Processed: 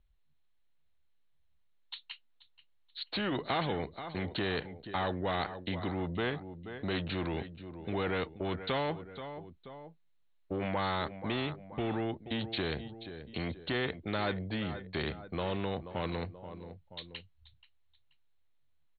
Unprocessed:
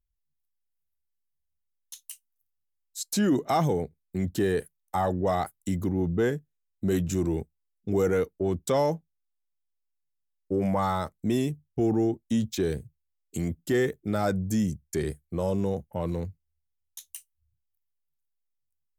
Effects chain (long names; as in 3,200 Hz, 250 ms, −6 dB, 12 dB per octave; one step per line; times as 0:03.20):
Chebyshev low-pass filter 4,300 Hz, order 10
repeating echo 481 ms, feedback 32%, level −20.5 dB
every bin compressed towards the loudest bin 2 to 1
level −2.5 dB